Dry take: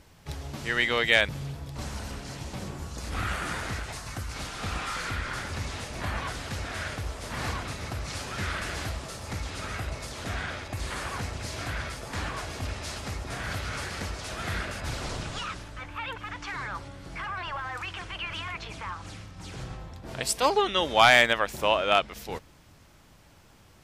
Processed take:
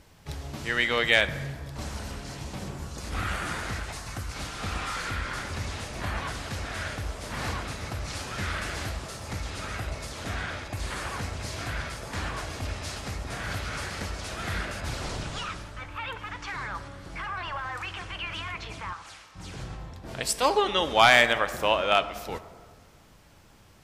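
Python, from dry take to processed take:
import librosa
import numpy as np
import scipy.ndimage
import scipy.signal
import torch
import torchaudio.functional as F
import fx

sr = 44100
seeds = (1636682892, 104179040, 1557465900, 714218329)

y = fx.highpass(x, sr, hz=760.0, slope=12, at=(18.93, 19.35))
y = fx.rev_plate(y, sr, seeds[0], rt60_s=1.7, hf_ratio=0.45, predelay_ms=0, drr_db=12.0)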